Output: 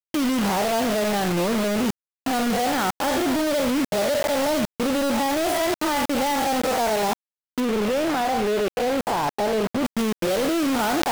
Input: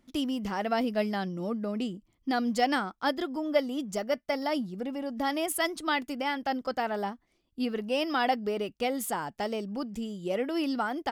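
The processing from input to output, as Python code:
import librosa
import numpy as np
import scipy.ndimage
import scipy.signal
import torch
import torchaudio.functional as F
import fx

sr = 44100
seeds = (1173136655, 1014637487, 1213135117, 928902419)

y = fx.spec_blur(x, sr, span_ms=117.0)
y = fx.highpass(y, sr, hz=66.0, slope=6)
y = fx.peak_eq(y, sr, hz=690.0, db=10.0, octaves=2.5)
y = fx.echo_feedback(y, sr, ms=73, feedback_pct=16, wet_db=-16.0)
y = fx.level_steps(y, sr, step_db=17)
y = scipy.signal.sosfilt(scipy.signal.butter(2, 6600.0, 'lowpass', fs=sr, output='sos'), y)
y = fx.quant_companded(y, sr, bits=2)
y = fx.high_shelf(y, sr, hz=4100.0, db=-7.5, at=(7.6, 9.85))
y = fx.sustainer(y, sr, db_per_s=120.0)
y = y * 10.0 ** (5.0 / 20.0)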